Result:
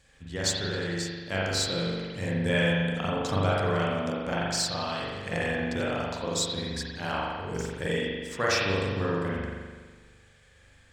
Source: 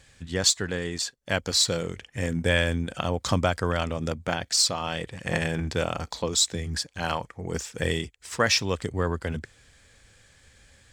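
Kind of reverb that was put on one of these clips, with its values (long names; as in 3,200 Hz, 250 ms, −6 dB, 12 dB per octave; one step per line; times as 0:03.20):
spring reverb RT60 1.5 s, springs 41 ms, chirp 50 ms, DRR −6 dB
level −7.5 dB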